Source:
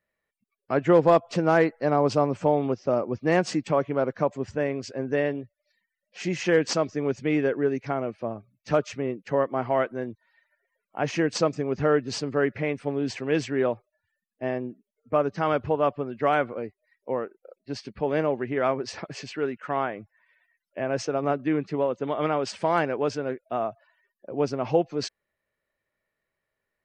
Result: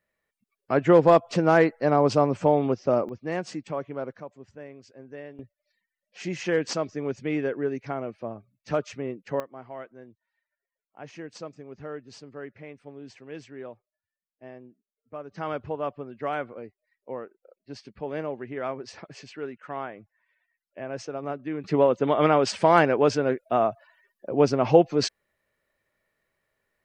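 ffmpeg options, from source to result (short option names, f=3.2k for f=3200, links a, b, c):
-af "asetnsamples=n=441:p=0,asendcmd='3.09 volume volume -8dB;4.2 volume volume -16dB;5.39 volume volume -3.5dB;9.4 volume volume -15.5dB;15.31 volume volume -7dB;21.64 volume volume 5.5dB',volume=1.5dB"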